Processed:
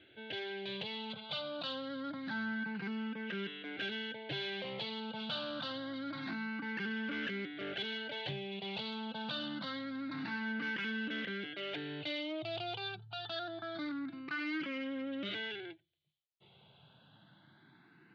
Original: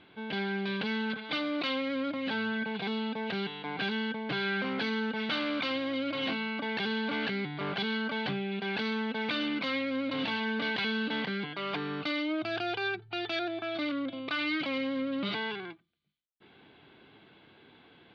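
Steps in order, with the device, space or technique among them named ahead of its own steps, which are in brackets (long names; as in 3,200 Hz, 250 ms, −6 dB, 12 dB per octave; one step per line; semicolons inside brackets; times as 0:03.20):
barber-pole phaser into a guitar amplifier (frequency shifter mixed with the dry sound +0.26 Hz; soft clipping −29.5 dBFS, distortion −18 dB; loudspeaker in its box 84–4,400 Hz, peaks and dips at 130 Hz +4 dB, 250 Hz −7 dB, 440 Hz −7 dB, 760 Hz −6 dB, 1,100 Hz −8 dB, 2,300 Hz −6 dB)
level +1 dB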